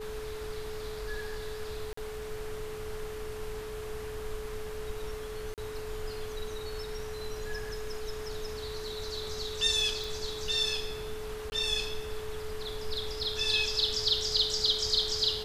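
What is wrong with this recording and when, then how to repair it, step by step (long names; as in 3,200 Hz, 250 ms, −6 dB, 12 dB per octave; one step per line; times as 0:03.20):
whistle 430 Hz −38 dBFS
0:01.93–0:01.97: drop-out 44 ms
0:05.54–0:05.58: drop-out 38 ms
0:10.04: click
0:11.50–0:11.52: drop-out 20 ms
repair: click removal
notch filter 430 Hz, Q 30
repair the gap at 0:01.93, 44 ms
repair the gap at 0:05.54, 38 ms
repair the gap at 0:11.50, 20 ms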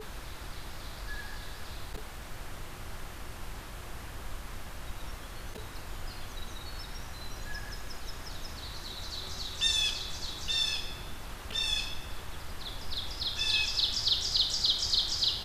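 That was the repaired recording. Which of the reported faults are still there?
none of them is left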